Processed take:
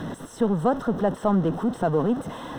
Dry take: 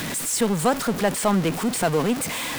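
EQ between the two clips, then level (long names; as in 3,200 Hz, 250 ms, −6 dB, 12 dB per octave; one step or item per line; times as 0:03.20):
moving average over 19 samples
0.0 dB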